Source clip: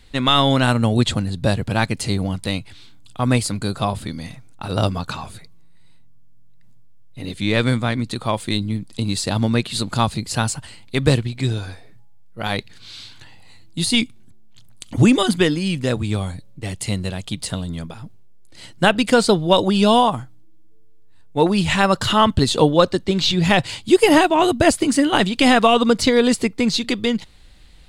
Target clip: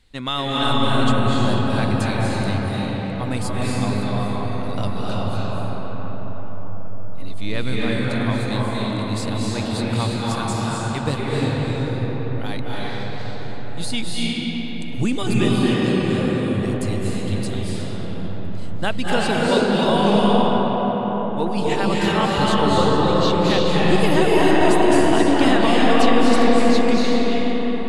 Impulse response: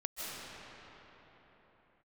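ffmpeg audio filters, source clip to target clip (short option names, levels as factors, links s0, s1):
-filter_complex "[1:a]atrim=start_sample=2205,asetrate=28665,aresample=44100[s0];[0:a][s0]afir=irnorm=-1:irlink=0,volume=0.422"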